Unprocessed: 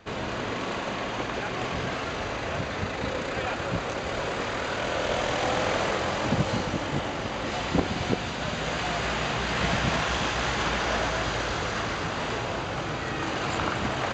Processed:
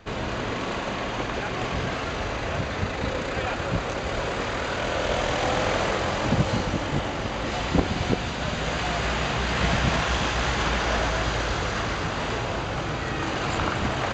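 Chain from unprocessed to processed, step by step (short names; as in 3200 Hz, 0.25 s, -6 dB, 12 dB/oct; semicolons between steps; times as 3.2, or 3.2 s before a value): low shelf 61 Hz +11 dB; gain +1.5 dB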